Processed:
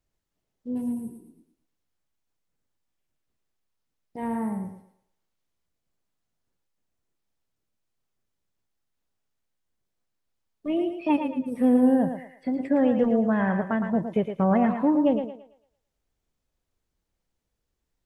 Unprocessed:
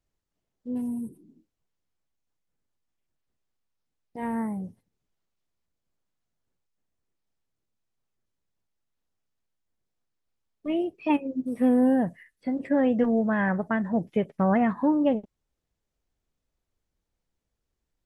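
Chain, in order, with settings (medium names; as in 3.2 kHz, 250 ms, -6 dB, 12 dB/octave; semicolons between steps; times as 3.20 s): dynamic bell 1.9 kHz, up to -5 dB, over -46 dBFS, Q 1.3; on a send: thinning echo 112 ms, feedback 37%, high-pass 330 Hz, level -6 dB; on the sum: trim +1 dB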